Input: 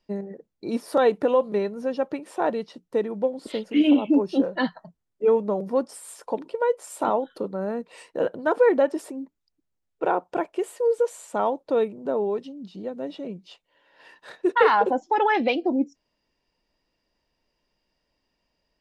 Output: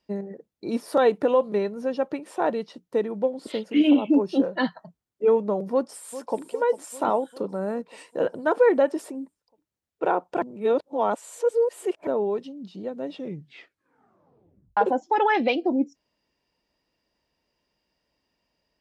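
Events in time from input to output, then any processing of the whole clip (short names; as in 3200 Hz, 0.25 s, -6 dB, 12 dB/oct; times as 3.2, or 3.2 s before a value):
5.72–6.45 echo throw 0.4 s, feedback 65%, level -13.5 dB
10.42–12.07 reverse
13.1 tape stop 1.67 s
whole clip: HPF 52 Hz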